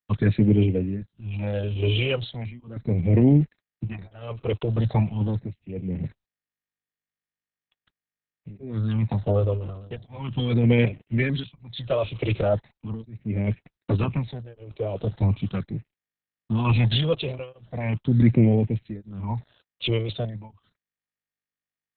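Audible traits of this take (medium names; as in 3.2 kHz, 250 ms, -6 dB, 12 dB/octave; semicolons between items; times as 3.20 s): a quantiser's noise floor 8-bit, dither none; tremolo triangle 0.67 Hz, depth 100%; phasing stages 8, 0.39 Hz, lowest notch 230–1200 Hz; Opus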